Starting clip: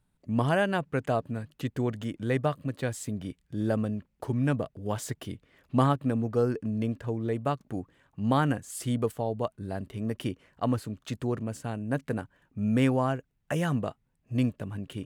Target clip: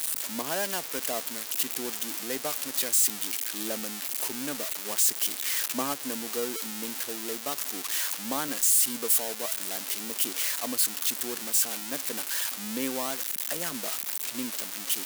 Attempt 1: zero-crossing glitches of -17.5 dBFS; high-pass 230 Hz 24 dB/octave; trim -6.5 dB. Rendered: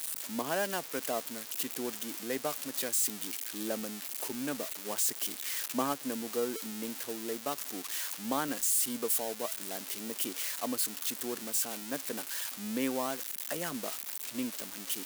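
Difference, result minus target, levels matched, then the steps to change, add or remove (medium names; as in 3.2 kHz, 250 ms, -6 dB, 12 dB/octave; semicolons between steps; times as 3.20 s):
zero-crossing glitches: distortion -7 dB
change: zero-crossing glitches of -10.5 dBFS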